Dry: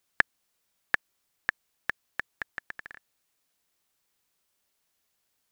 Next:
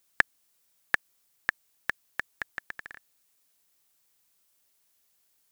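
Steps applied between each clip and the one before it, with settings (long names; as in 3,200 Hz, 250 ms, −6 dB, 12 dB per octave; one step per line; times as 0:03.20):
high-shelf EQ 5,800 Hz +8.5 dB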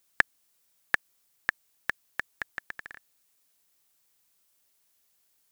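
no processing that can be heard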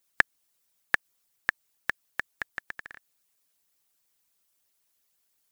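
harmonic and percussive parts rebalanced harmonic −15 dB
level +1 dB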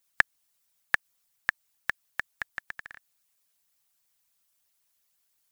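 parametric band 350 Hz −10.5 dB 0.84 octaves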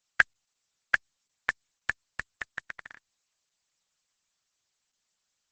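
Opus 10 kbit/s 48,000 Hz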